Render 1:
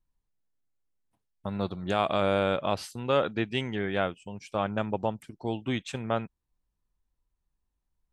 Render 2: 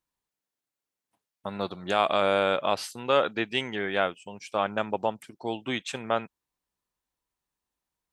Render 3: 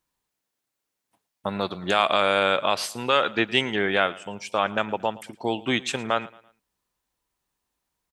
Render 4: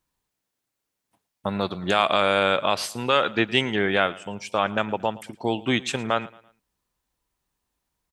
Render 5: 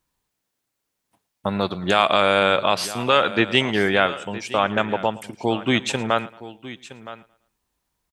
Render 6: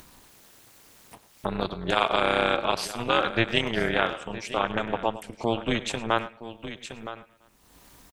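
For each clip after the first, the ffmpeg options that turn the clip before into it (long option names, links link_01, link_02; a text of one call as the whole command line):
ffmpeg -i in.wav -af "highpass=frequency=500:poles=1,volume=4.5dB" out.wav
ffmpeg -i in.wav -filter_complex "[0:a]acrossover=split=1100[link_01][link_02];[link_01]alimiter=limit=-22dB:level=0:latency=1:release=252[link_03];[link_03][link_02]amix=inputs=2:normalize=0,aecho=1:1:112|224|336:0.0944|0.0368|0.0144,volume=6.5dB" out.wav
ffmpeg -i in.wav -af "lowshelf=frequency=200:gain=6" out.wav
ffmpeg -i in.wav -af "aecho=1:1:966:0.158,volume=3dB" out.wav
ffmpeg -i in.wav -filter_complex "[0:a]tremolo=f=230:d=0.919,acompressor=mode=upward:threshold=-26dB:ratio=2.5,asplit=2[link_01][link_02];[link_02]adelay=100,highpass=300,lowpass=3400,asoftclip=type=hard:threshold=-10.5dB,volume=-15dB[link_03];[link_01][link_03]amix=inputs=2:normalize=0,volume=-2dB" out.wav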